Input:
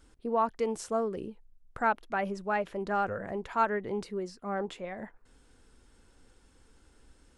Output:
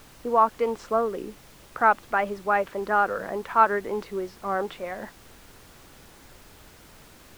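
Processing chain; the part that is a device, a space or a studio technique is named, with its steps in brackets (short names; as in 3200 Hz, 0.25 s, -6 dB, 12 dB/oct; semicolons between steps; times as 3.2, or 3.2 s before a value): horn gramophone (BPF 260–3300 Hz; bell 1200 Hz +5 dB; wow and flutter; pink noise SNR 23 dB); gain +5.5 dB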